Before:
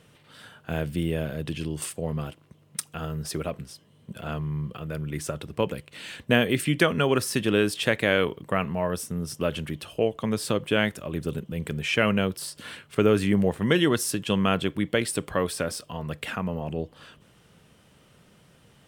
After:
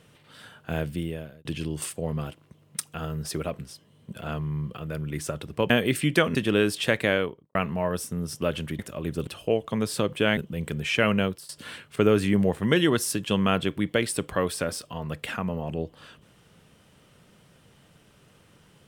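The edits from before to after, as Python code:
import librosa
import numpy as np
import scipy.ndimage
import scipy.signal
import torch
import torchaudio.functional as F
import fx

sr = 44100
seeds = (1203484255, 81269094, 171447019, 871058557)

y = fx.studio_fade_out(x, sr, start_s=8.02, length_s=0.52)
y = fx.edit(y, sr, fx.fade_out_span(start_s=0.8, length_s=0.65),
    fx.cut(start_s=5.7, length_s=0.64),
    fx.cut(start_s=6.99, length_s=0.35),
    fx.move(start_s=10.88, length_s=0.48, to_s=9.78),
    fx.fade_out_to(start_s=12.23, length_s=0.25, floor_db=-18.5), tone=tone)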